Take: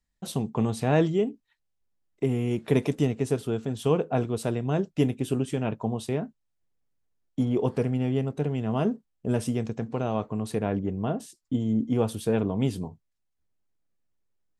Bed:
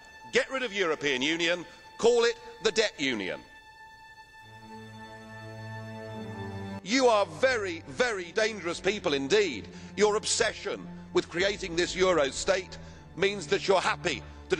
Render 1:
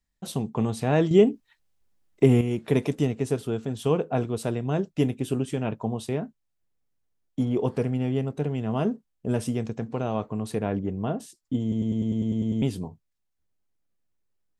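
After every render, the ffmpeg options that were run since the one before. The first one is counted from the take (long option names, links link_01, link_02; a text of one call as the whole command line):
ffmpeg -i in.wav -filter_complex "[0:a]asplit=13[link_01][link_02][link_03][link_04][link_05][link_06][link_07][link_08][link_09][link_10][link_11][link_12][link_13];[link_01]atrim=end=1.112[link_14];[link_02]atrim=start=1.108:end=2.412,asetpts=PTS-STARTPTS,volume=8dB[link_15];[link_03]atrim=start=2.408:end=11.722[link_16];[link_04]atrim=start=11.618:end=11.722[link_17];[link_05]atrim=start=11.618:end=11.722[link_18];[link_06]atrim=start=11.618:end=11.722[link_19];[link_07]atrim=start=11.618:end=11.722[link_20];[link_08]atrim=start=11.618:end=11.722[link_21];[link_09]atrim=start=11.618:end=11.722[link_22];[link_10]atrim=start=11.618:end=11.722[link_23];[link_11]atrim=start=11.618:end=11.722[link_24];[link_12]atrim=start=11.618:end=11.722[link_25];[link_13]atrim=start=12.618[link_26];[link_14][link_15]acrossfade=duration=0.004:curve1=hsin:curve2=hsin[link_27];[link_27][link_16]acrossfade=duration=0.004:curve1=hsin:curve2=hsin[link_28];[link_28][link_17]acrossfade=duration=0.004:curve1=hsin:curve2=hsin[link_29];[link_29][link_18]acrossfade=duration=0.004:curve1=hsin:curve2=hsin[link_30];[link_30][link_19]acrossfade=duration=0.004:curve1=hsin:curve2=hsin[link_31];[link_31][link_20]acrossfade=duration=0.004:curve1=hsin:curve2=hsin[link_32];[link_32][link_21]acrossfade=duration=0.004:curve1=hsin:curve2=hsin[link_33];[link_33][link_22]acrossfade=duration=0.004:curve1=hsin:curve2=hsin[link_34];[link_34][link_23]acrossfade=duration=0.004:curve1=hsin:curve2=hsin[link_35];[link_35][link_24]acrossfade=duration=0.004:curve1=hsin:curve2=hsin[link_36];[link_36][link_25]acrossfade=duration=0.004:curve1=hsin:curve2=hsin[link_37];[link_37][link_26]acrossfade=duration=0.004:curve1=hsin:curve2=hsin" out.wav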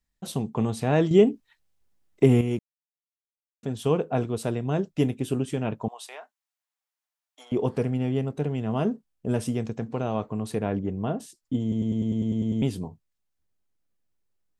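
ffmpeg -i in.wav -filter_complex "[0:a]asettb=1/sr,asplit=3[link_01][link_02][link_03];[link_01]atrim=end=5.884[link_04];[link_02]atrim=start=5.88:end=7.52,asetpts=PTS-STARTPTS,afade=type=in:duration=0.004:curve=qsin,afade=type=out:start_time=1.636:duration=0.004:curve=qsin,highpass=frequency=750:width=0.5412,highpass=frequency=750:width=1.3066[link_05];[link_03]atrim=start=7.516[link_06];[link_04][link_05]acrossfade=duration=0.004:curve1=hsin:curve2=qsin[link_07];[link_07][link_06]acrossfade=duration=0.004:curve1=qsin:curve2=hsin,asplit=3[link_08][link_09][link_10];[link_08]atrim=end=2.59,asetpts=PTS-STARTPTS,afade=type=out:start_time=2.586:duration=0.004:curve=hsin[link_11];[link_09]atrim=start=2.59:end=3.63,asetpts=PTS-STARTPTS,volume=0[link_12];[link_10]atrim=start=3.63,asetpts=PTS-STARTPTS,afade=type=in:duration=0.004:curve=hsin[link_13];[link_11][link_12][link_13]concat=n=3:v=0:a=1" out.wav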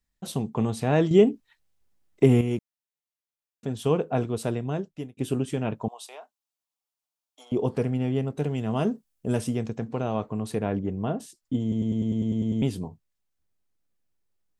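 ffmpeg -i in.wav -filter_complex "[0:a]asettb=1/sr,asplit=3[link_01][link_02][link_03];[link_01]atrim=end=5.864[link_04];[link_02]atrim=start=5.86:end=7.75,asetpts=PTS-STARTPTS,afade=type=in:duration=0.004:curve=qsin,afade=type=out:start_time=1.886:duration=0.004:curve=qsin,equalizer=frequency=1800:width_type=o:width=0.78:gain=-9.5[link_05];[link_03]atrim=start=7.746[link_06];[link_04][link_05]acrossfade=duration=0.004:curve1=hsin:curve2=qsin[link_07];[link_07][link_06]acrossfade=duration=0.004:curve1=qsin:curve2=hsin,asettb=1/sr,asplit=3[link_08][link_09][link_10];[link_08]atrim=end=8.384[link_11];[link_09]atrim=start=8.38:end=9.41,asetpts=PTS-STARTPTS,afade=type=in:duration=0.004:curve=qsin,afade=type=out:start_time=1.026:duration=0.004:curve=qsin,highshelf=frequency=4700:gain=9.5[link_12];[link_10]atrim=start=9.406[link_13];[link_11][link_12]acrossfade=duration=0.004:curve1=hsin:curve2=qsin[link_14];[link_14][link_13]acrossfade=duration=0.004:curve1=qsin:curve2=hsin,asplit=2[link_15][link_16];[link_15]atrim=end=5.17,asetpts=PTS-STARTPTS,afade=type=out:start_time=4.54:duration=0.63[link_17];[link_16]atrim=start=5.17,asetpts=PTS-STARTPTS,afade=type=in:duration=0.004:curve=hsin[link_18];[link_17][link_18]concat=n=2:v=0:a=1" out.wav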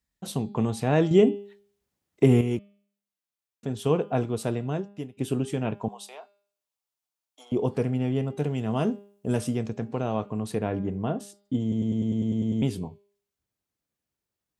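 ffmpeg -i in.wav -af "highpass=52,bandreject=frequency=201.9:width_type=h:width=4,bandreject=frequency=403.8:width_type=h:width=4,bandreject=frequency=605.7:width_type=h:width=4,bandreject=frequency=807.6:width_type=h:width=4,bandreject=frequency=1009.5:width_type=h:width=4,bandreject=frequency=1211.4:width_type=h:width=4,bandreject=frequency=1413.3:width_type=h:width=4,bandreject=frequency=1615.2:width_type=h:width=4,bandreject=frequency=1817.1:width_type=h:width=4,bandreject=frequency=2019:width_type=h:width=4,bandreject=frequency=2220.9:width_type=h:width=4,bandreject=frequency=2422.8:width_type=h:width=4,bandreject=frequency=2624.7:width_type=h:width=4,bandreject=frequency=2826.6:width_type=h:width=4,bandreject=frequency=3028.5:width_type=h:width=4,bandreject=frequency=3230.4:width_type=h:width=4,bandreject=frequency=3432.3:width_type=h:width=4,bandreject=frequency=3634.2:width_type=h:width=4,bandreject=frequency=3836.1:width_type=h:width=4,bandreject=frequency=4038:width_type=h:width=4,bandreject=frequency=4239.9:width_type=h:width=4,bandreject=frequency=4441.8:width_type=h:width=4,bandreject=frequency=4643.7:width_type=h:width=4,bandreject=frequency=4845.6:width_type=h:width=4,bandreject=frequency=5047.5:width_type=h:width=4" out.wav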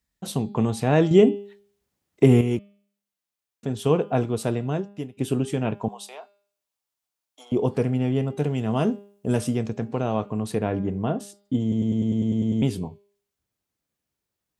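ffmpeg -i in.wav -af "volume=3dB" out.wav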